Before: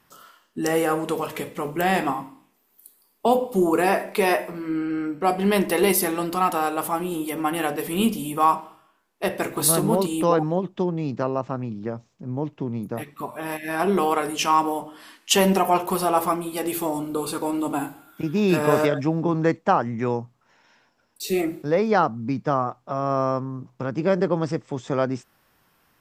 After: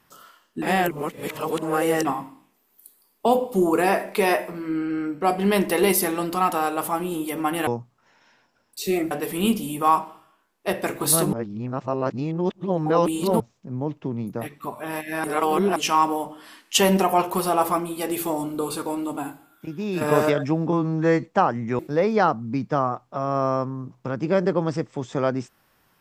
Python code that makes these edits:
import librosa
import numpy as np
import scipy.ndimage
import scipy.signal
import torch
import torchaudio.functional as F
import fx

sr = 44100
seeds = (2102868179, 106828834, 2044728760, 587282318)

y = fx.edit(x, sr, fx.reverse_span(start_s=0.62, length_s=1.43),
    fx.reverse_span(start_s=9.89, length_s=2.07),
    fx.reverse_span(start_s=13.8, length_s=0.52),
    fx.fade_out_to(start_s=17.22, length_s=1.35, curve='qua', floor_db=-7.5),
    fx.stretch_span(start_s=19.29, length_s=0.25, factor=2.0),
    fx.move(start_s=20.1, length_s=1.44, to_s=7.67), tone=tone)